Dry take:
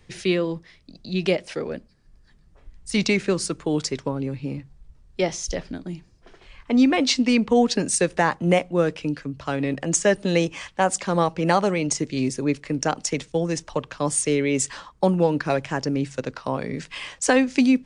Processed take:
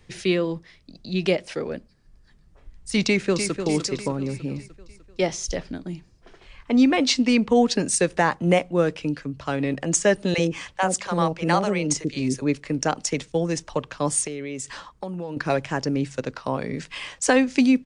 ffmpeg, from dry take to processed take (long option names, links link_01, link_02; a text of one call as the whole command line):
ffmpeg -i in.wav -filter_complex "[0:a]asplit=2[link_01][link_02];[link_02]afade=type=in:start_time=3.05:duration=0.01,afade=type=out:start_time=3.59:duration=0.01,aecho=0:1:300|600|900|1200|1500|1800|2100:0.398107|0.218959|0.120427|0.0662351|0.0364293|0.0200361|0.0110199[link_03];[link_01][link_03]amix=inputs=2:normalize=0,asettb=1/sr,asplit=3[link_04][link_05][link_06];[link_04]atrim=end=10.344[link_07];[link_05]atrim=start=10.34:end=12.42,asetpts=PTS-STARTPTS,afade=type=in:duration=0.004:curve=qsin,afade=type=out:start_time=2.076:duration=0.004:curve=qsin,acrossover=split=570[link_08][link_09];[link_08]adelay=40[link_10];[link_10][link_09]amix=inputs=2:normalize=0,atrim=end_sample=91728[link_11];[link_06]atrim=start=12.416[link_12];[link_07][link_11]acrossfade=duration=0.004:curve1=hsin:curve2=qsin[link_13];[link_13][link_12]acrossfade=duration=0.004:curve1=qsin:curve2=hsin,asettb=1/sr,asplit=3[link_14][link_15][link_16];[link_14]atrim=end=14.274[link_17];[link_15]atrim=start=14.27:end=15.37,asetpts=PTS-STARTPTS,afade=type=in:duration=0.004:curve=qsin,afade=type=out:start_time=1.096:duration=0.004:curve=qsin,acompressor=threshold=-30dB:ratio=4:attack=3.2:release=140:knee=1:detection=peak[link_18];[link_16]atrim=start=15.366[link_19];[link_17][link_18]acrossfade=duration=0.004:curve1=hsin:curve2=qsin[link_20];[link_20][link_19]acrossfade=duration=0.004:curve1=qsin:curve2=hsin" out.wav